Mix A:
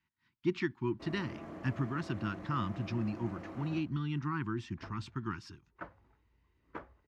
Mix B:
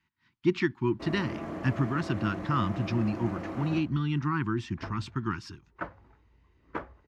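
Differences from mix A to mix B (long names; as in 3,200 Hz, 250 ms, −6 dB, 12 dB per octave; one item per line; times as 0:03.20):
speech +6.5 dB
background +9.0 dB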